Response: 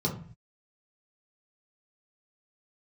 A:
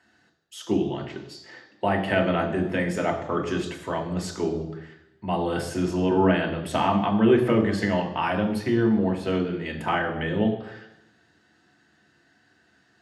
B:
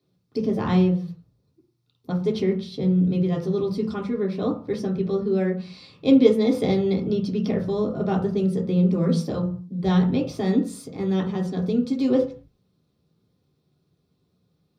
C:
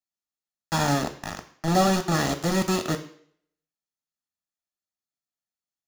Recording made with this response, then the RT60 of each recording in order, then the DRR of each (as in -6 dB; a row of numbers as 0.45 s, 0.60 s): B; 0.90 s, 0.45 s, 0.60 s; 1.5 dB, -2.5 dB, 7.5 dB